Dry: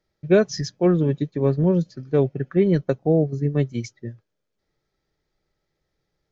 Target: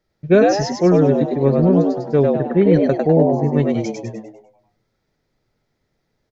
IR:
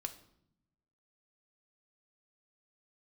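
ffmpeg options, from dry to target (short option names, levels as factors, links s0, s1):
-filter_complex "[0:a]asplit=7[s0][s1][s2][s3][s4][s5][s6];[s1]adelay=100,afreqshift=100,volume=0.708[s7];[s2]adelay=200,afreqshift=200,volume=0.305[s8];[s3]adelay=300,afreqshift=300,volume=0.13[s9];[s4]adelay=400,afreqshift=400,volume=0.0562[s10];[s5]adelay=500,afreqshift=500,volume=0.0243[s11];[s6]adelay=600,afreqshift=600,volume=0.0104[s12];[s0][s7][s8][s9][s10][s11][s12]amix=inputs=7:normalize=0,asplit=2[s13][s14];[1:a]atrim=start_sample=2205,lowpass=3200[s15];[s14][s15]afir=irnorm=-1:irlink=0,volume=0.251[s16];[s13][s16]amix=inputs=2:normalize=0,volume=1.26"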